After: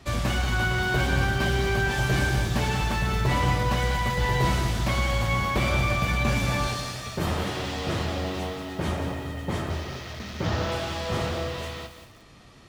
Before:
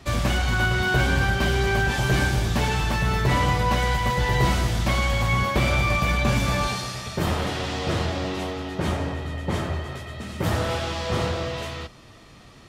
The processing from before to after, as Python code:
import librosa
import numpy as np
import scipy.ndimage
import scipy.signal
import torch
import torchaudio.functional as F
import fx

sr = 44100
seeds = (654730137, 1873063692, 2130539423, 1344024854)

y = fx.delta_mod(x, sr, bps=32000, step_db=-29.5, at=(9.7, 10.72))
y = fx.echo_crushed(y, sr, ms=184, feedback_pct=35, bits=7, wet_db=-8.5)
y = y * 10.0 ** (-3.0 / 20.0)